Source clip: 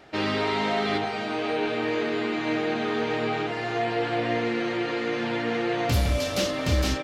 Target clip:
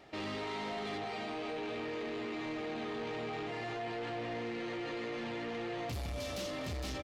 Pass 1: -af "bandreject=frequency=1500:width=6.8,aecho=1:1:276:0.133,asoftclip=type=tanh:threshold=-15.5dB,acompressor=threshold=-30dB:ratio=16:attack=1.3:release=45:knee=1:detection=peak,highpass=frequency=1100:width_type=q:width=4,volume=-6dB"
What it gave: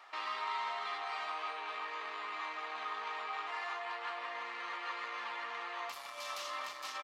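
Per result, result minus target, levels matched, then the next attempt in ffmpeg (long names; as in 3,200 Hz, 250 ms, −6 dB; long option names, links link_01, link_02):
soft clipping: distortion −10 dB; 1,000 Hz band +5.0 dB
-af "bandreject=frequency=1500:width=6.8,aecho=1:1:276:0.133,asoftclip=type=tanh:threshold=-23.5dB,acompressor=threshold=-30dB:ratio=16:attack=1.3:release=45:knee=1:detection=peak,highpass=frequency=1100:width_type=q:width=4,volume=-6dB"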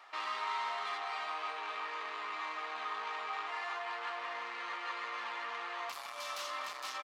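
1,000 Hz band +5.0 dB
-af "bandreject=frequency=1500:width=6.8,aecho=1:1:276:0.133,asoftclip=type=tanh:threshold=-23.5dB,acompressor=threshold=-30dB:ratio=16:attack=1.3:release=45:knee=1:detection=peak,volume=-6dB"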